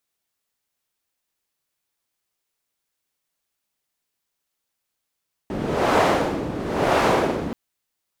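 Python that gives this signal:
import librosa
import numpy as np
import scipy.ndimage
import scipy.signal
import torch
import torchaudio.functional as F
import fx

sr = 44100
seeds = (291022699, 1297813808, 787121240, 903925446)

y = fx.wind(sr, seeds[0], length_s=2.03, low_hz=280.0, high_hz=710.0, q=1.0, gusts=2, swing_db=10.5)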